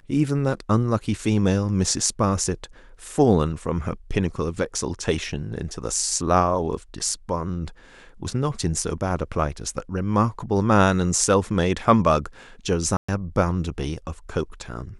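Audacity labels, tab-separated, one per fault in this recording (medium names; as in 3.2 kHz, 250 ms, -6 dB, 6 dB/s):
12.970000	13.090000	dropout 115 ms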